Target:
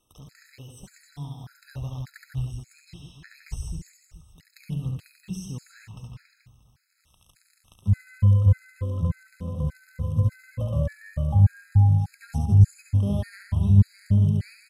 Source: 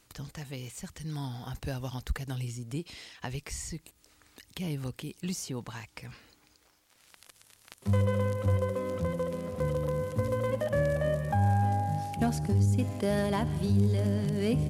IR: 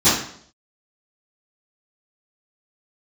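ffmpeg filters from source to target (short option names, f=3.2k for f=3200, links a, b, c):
-filter_complex "[0:a]asubboost=boost=9:cutoff=130,bandreject=f=60:t=h:w=6,bandreject=f=120:t=h:w=6,bandreject=f=180:t=h:w=6,bandreject=f=240:t=h:w=6,bandreject=f=300:t=h:w=6,asplit=2[a][b];[b]aecho=0:1:70|161|279.3|433.1|633:0.631|0.398|0.251|0.158|0.1[c];[a][c]amix=inputs=2:normalize=0,afftfilt=real='re*gt(sin(2*PI*1.7*pts/sr)*(1-2*mod(floor(b*sr/1024/1300),2)),0)':imag='im*gt(sin(2*PI*1.7*pts/sr)*(1-2*mod(floor(b*sr/1024/1300),2)),0)':win_size=1024:overlap=0.75,volume=-5dB"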